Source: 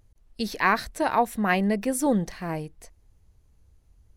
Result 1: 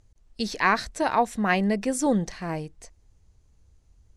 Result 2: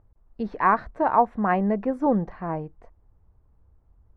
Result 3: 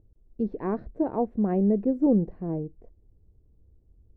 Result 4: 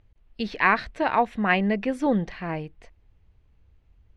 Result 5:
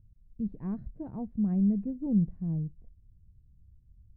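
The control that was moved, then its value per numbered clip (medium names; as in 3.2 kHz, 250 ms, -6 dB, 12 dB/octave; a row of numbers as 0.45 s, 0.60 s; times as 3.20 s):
resonant low-pass, frequency: 7.3 kHz, 1.1 kHz, 400 Hz, 2.8 kHz, 160 Hz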